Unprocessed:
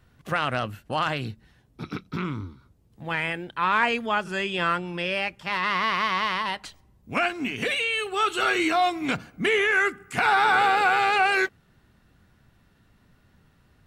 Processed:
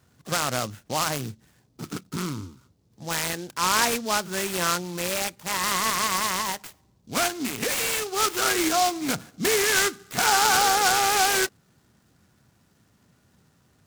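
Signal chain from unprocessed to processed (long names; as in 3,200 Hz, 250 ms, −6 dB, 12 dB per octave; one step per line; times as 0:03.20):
high-pass filter 96 Hz
short delay modulated by noise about 4,800 Hz, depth 0.088 ms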